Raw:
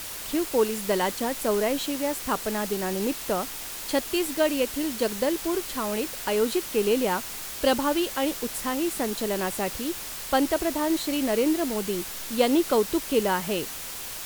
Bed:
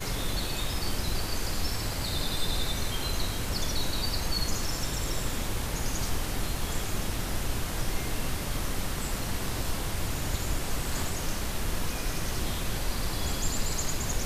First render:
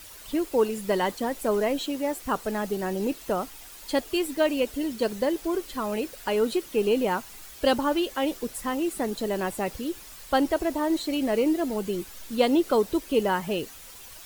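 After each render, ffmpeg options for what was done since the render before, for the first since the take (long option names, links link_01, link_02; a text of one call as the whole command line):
ffmpeg -i in.wav -af "afftdn=noise_reduction=11:noise_floor=-36" out.wav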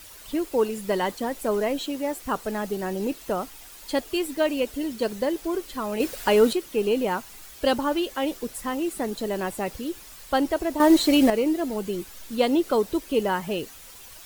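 ffmpeg -i in.wav -filter_complex "[0:a]asettb=1/sr,asplit=3[link_01][link_02][link_03];[link_01]atrim=end=6.004[link_04];[link_02]atrim=start=6:end=6.53,asetpts=PTS-STARTPTS,afade=type=in:duration=0.004:curve=qsin,afade=type=out:start_time=0.526:duration=0.004:curve=qsin,acontrast=72[link_05];[link_03]atrim=start=6.526[link_06];[link_04][link_05]acrossfade=duration=0.004:curve1=hsin:curve2=qsin[link_07];[link_07][link_06]acrossfade=duration=0.004:curve1=qsin:curve2=hsin,asplit=3[link_08][link_09][link_10];[link_08]atrim=end=10.802[link_11];[link_09]atrim=start=10.798:end=11.302,asetpts=PTS-STARTPTS,volume=9dB[link_12];[link_10]atrim=start=11.298[link_13];[link_11][link_12]acrossfade=duration=0.004:curve1=hsin:curve2=hsin[link_14];[link_14][link_13]acrossfade=duration=0.004:curve1=hsin:curve2=hsin" out.wav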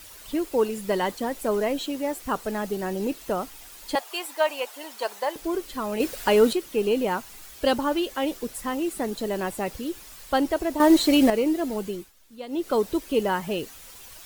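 ffmpeg -i in.wav -filter_complex "[0:a]asettb=1/sr,asplit=3[link_01][link_02][link_03];[link_01]atrim=end=3.954[link_04];[link_02]atrim=start=3.95:end=5.36,asetpts=PTS-STARTPTS,afade=type=in:duration=0.004:curve=qsin,afade=type=out:start_time=1.406:duration=0.004:curve=qsin,highpass=frequency=840:width_type=q:width=2.5[link_05];[link_03]atrim=start=5.356[link_06];[link_04][link_05]acrossfade=duration=0.004:curve1=hsin:curve2=qsin[link_07];[link_07][link_06]acrossfade=duration=0.004:curve1=qsin:curve2=hsin,asplit=3[link_08][link_09][link_10];[link_08]atrim=end=12.12,asetpts=PTS-STARTPTS,afade=type=out:start_time=11.71:duration=0.41:curve=qsin:silence=0.158489[link_11];[link_09]atrim=start=12.12:end=12.47,asetpts=PTS-STARTPTS,volume=-16dB[link_12];[link_10]atrim=start=12.47,asetpts=PTS-STARTPTS,afade=type=in:duration=0.41:curve=qsin:silence=0.158489[link_13];[link_11][link_12][link_13]concat=n=3:v=0:a=1" out.wav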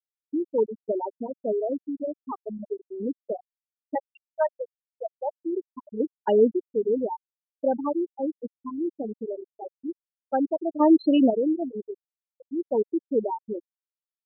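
ffmpeg -i in.wav -af "afftfilt=real='re*gte(hypot(re,im),0.316)':imag='im*gte(hypot(re,im),0.316)':win_size=1024:overlap=0.75,lowpass=frequency=1500:poles=1" out.wav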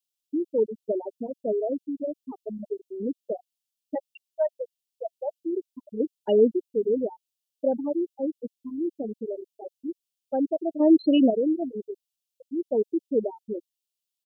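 ffmpeg -i in.wav -filter_complex "[0:a]acrossover=split=2500[link_01][link_02];[link_02]acompressor=threshold=-58dB:ratio=4:attack=1:release=60[link_03];[link_01][link_03]amix=inputs=2:normalize=0,firequalizer=gain_entry='entry(670,0);entry(1100,-24);entry(2800,10)':delay=0.05:min_phase=1" out.wav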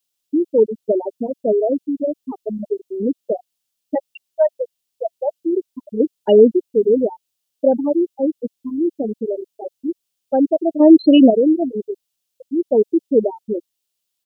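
ffmpeg -i in.wav -af "volume=9.5dB,alimiter=limit=-1dB:level=0:latency=1" out.wav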